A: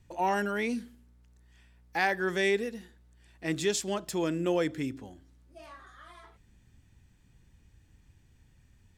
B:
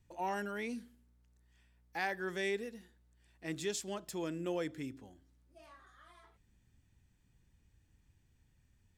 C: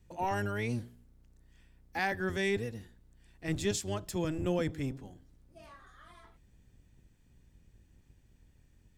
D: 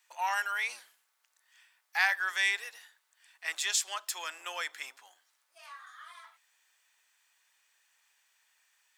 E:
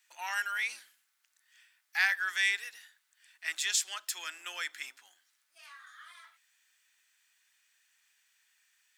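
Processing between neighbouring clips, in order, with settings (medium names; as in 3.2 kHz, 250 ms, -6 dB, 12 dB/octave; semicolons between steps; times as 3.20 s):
treble shelf 9 kHz +3.5 dB; trim -9 dB
octave divider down 1 oct, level +2 dB; trim +4 dB
high-pass 1 kHz 24 dB/octave; trim +8 dB
high-order bell 690 Hz -9 dB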